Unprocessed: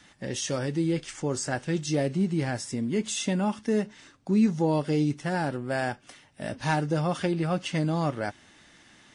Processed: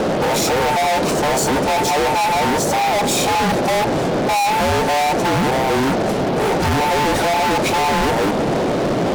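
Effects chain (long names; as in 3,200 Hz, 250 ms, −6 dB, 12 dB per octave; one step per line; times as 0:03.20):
frequency inversion band by band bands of 1,000 Hz
tilt shelving filter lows +8 dB, about 640 Hz
noise in a band 120–700 Hz −39 dBFS
fuzz pedal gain 44 dB, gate −51 dBFS
level −2.5 dB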